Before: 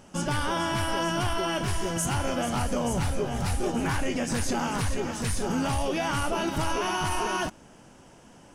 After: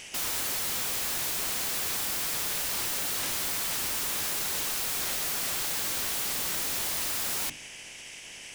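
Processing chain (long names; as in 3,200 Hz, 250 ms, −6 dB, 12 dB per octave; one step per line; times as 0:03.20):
ceiling on every frequency bin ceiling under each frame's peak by 17 dB
high shelf with overshoot 1,700 Hz +8.5 dB, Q 3
mains-hum notches 50/100/150/200/250/300 Hz
wrap-around overflow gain 26 dB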